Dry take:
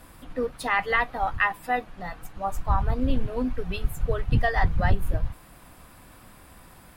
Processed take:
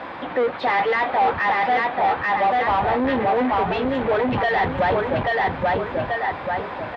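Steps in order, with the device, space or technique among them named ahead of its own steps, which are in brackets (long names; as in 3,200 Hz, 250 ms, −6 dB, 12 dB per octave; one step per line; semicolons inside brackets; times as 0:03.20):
repeating echo 835 ms, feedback 29%, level −5 dB
overdrive pedal into a guitar cabinet (mid-hump overdrive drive 34 dB, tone 3,200 Hz, clips at −9 dBFS; loudspeaker in its box 83–3,400 Hz, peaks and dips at 140 Hz −4 dB, 370 Hz +3 dB, 560 Hz +4 dB, 840 Hz +5 dB, 1,300 Hz −3 dB, 2,800 Hz −5 dB)
level −5 dB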